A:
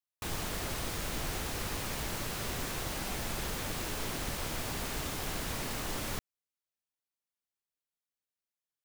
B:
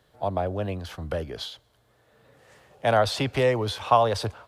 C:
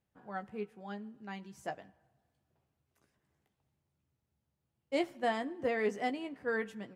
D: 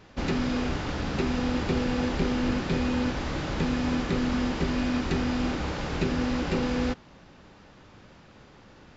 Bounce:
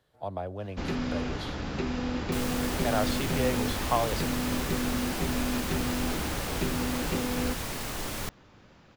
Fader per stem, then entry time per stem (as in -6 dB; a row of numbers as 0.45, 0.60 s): +2.0 dB, -8.0 dB, off, -4.0 dB; 2.10 s, 0.00 s, off, 0.60 s